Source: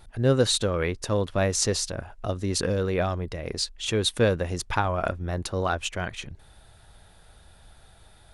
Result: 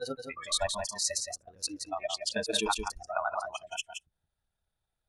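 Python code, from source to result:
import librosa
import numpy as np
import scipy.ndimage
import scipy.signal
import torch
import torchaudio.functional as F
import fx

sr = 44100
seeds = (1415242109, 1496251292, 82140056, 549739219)

y = fx.block_reorder(x, sr, ms=121.0, group=4)
y = fx.stretch_grains(y, sr, factor=0.61, grain_ms=57.0)
y = fx.noise_reduce_blind(y, sr, reduce_db=30)
y = y + 10.0 ** (-6.5 / 20.0) * np.pad(y, (int(171 * sr / 1000.0), 0))[:len(y)]
y = F.gain(torch.from_numpy(y), -1.5).numpy()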